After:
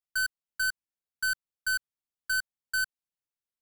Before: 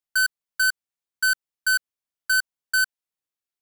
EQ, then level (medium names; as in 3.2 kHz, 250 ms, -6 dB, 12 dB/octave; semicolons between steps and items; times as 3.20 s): bass shelf 290 Hz +7 dB; -8.0 dB